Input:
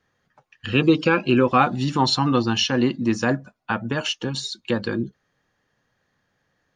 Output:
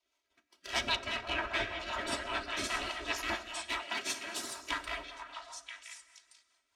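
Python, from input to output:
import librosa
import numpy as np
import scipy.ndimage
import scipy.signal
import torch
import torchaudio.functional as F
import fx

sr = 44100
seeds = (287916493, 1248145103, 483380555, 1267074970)

p1 = np.maximum(x, 0.0)
p2 = fx.spec_gate(p1, sr, threshold_db=-20, keep='weak')
p3 = fx.env_lowpass_down(p2, sr, base_hz=2600.0, full_db=-16.0)
p4 = p3 + 0.85 * np.pad(p3, (int(3.1 * sr / 1000.0), 0))[:len(p3)]
p5 = p4 + fx.echo_stepped(p4, sr, ms=491, hz=1000.0, octaves=1.4, feedback_pct=70, wet_db=-3, dry=0)
p6 = fx.rev_plate(p5, sr, seeds[0], rt60_s=2.0, hf_ratio=0.6, predelay_ms=0, drr_db=7.5)
p7 = fx.rotary(p6, sr, hz=5.0)
p8 = fx.high_shelf(p7, sr, hz=4000.0, db=-11.5, at=(0.96, 2.64))
y = fx.highpass(p8, sr, hz=120.0, slope=24, at=(3.83, 4.55))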